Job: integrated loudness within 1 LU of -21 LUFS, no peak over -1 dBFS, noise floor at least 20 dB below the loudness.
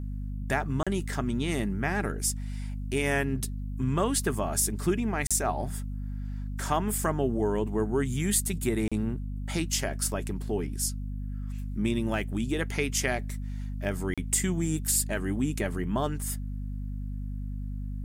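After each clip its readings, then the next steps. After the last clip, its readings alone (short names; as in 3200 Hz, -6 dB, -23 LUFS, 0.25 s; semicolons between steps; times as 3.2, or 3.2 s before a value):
dropouts 4; longest dropout 36 ms; hum 50 Hz; harmonics up to 250 Hz; hum level -31 dBFS; loudness -30.0 LUFS; peak -11.0 dBFS; loudness target -21.0 LUFS
-> interpolate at 0.83/5.27/8.88/14.14, 36 ms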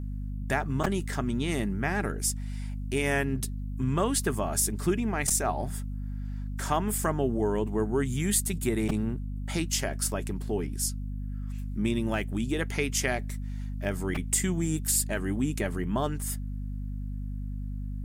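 dropouts 0; hum 50 Hz; harmonics up to 250 Hz; hum level -31 dBFS
-> de-hum 50 Hz, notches 5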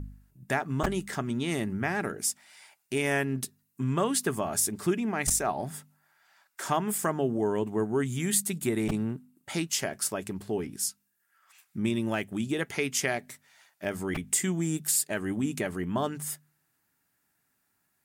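hum none; loudness -29.5 LUFS; peak -10.5 dBFS; loudness target -21.0 LUFS
-> gain +8.5 dB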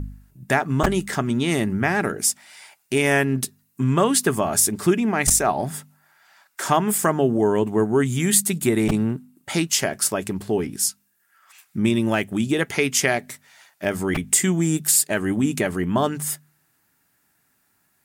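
loudness -21.0 LUFS; peak -2.0 dBFS; noise floor -67 dBFS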